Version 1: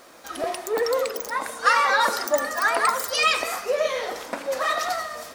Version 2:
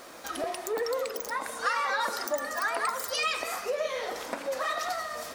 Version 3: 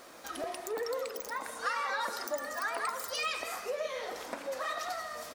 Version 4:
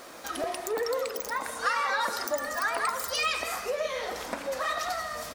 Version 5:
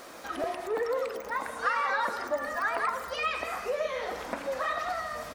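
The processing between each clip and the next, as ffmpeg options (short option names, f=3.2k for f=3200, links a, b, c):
-af "acompressor=threshold=-37dB:ratio=2,volume=2dB"
-af "aecho=1:1:161:0.168,volume=-5dB"
-af "asubboost=boost=2.5:cutoff=190,volume=6dB"
-filter_complex "[0:a]acrossover=split=2800[a][b];[b]acompressor=threshold=-49dB:ratio=4:attack=1:release=60[c];[a][c]amix=inputs=2:normalize=0"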